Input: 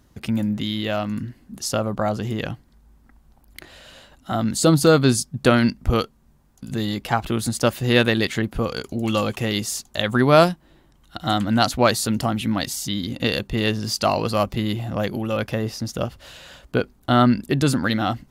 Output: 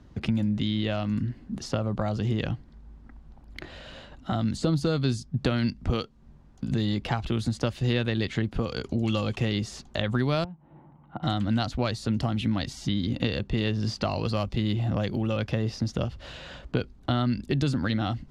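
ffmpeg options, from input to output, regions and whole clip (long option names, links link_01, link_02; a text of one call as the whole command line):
ffmpeg -i in.wav -filter_complex "[0:a]asettb=1/sr,asplit=3[link_01][link_02][link_03];[link_01]atrim=end=10.444[link_04];[link_02]atrim=start=10.44:end=11.23,asetpts=PTS-STARTPTS,afade=type=in:duration=0.004:curve=qsin,afade=type=out:start_time=0.786:duration=0.004:curve=qsin,bandreject=frequency=400:width=7.3,acompressor=threshold=-34dB:ratio=2.5:attack=3.2:release=140:knee=1:detection=peak,highpass=130,equalizer=frequency=150:width_type=q:width=4:gain=8,equalizer=frequency=860:width_type=q:width=4:gain=10,equalizer=frequency=1700:width_type=q:width=4:gain=-9,lowpass=frequency=2000:width=0.5412,lowpass=frequency=2000:width=1.3066[link_05];[link_03]atrim=start=11.226[link_06];[link_04][link_05]acrossfade=duration=0.004:curve1=hsin:curve2=qsin[link_07];[link_07][link_06]acrossfade=duration=0.004:curve1=qsin:curve2=hsin,acrossover=split=98|2900[link_08][link_09][link_10];[link_08]acompressor=threshold=-38dB:ratio=4[link_11];[link_09]acompressor=threshold=-31dB:ratio=4[link_12];[link_10]acompressor=threshold=-34dB:ratio=4[link_13];[link_11][link_12][link_13]amix=inputs=3:normalize=0,lowpass=4600,lowshelf=frequency=500:gain=6" out.wav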